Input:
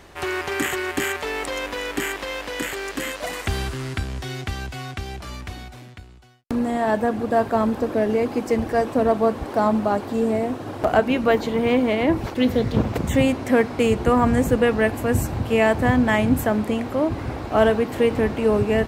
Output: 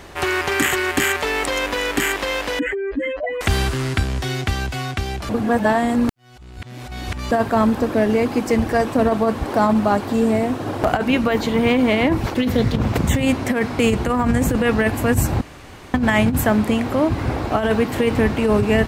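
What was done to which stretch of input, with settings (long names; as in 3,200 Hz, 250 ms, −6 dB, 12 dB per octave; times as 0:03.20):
0:02.59–0:03.41: expanding power law on the bin magnitudes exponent 3.1
0:05.29–0:07.31: reverse
0:15.41–0:15.94: fill with room tone
whole clip: dynamic equaliser 490 Hz, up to −5 dB, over −29 dBFS, Q 0.81; compressor whose output falls as the input rises −21 dBFS, ratio −0.5; level +6 dB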